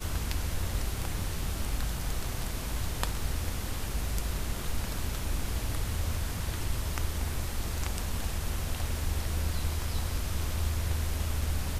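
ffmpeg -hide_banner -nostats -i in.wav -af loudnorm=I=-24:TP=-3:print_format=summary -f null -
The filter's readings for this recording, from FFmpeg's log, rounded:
Input Integrated:    -33.7 LUFS
Input True Peak:      -8.8 dBTP
Input LRA:             1.9 LU
Input Threshold:     -43.7 LUFS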